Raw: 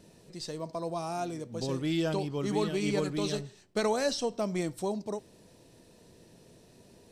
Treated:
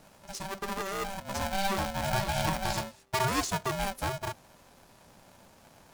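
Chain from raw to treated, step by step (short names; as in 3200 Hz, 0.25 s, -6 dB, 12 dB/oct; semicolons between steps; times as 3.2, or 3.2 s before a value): wide varispeed 1.2×; polarity switched at an audio rate 390 Hz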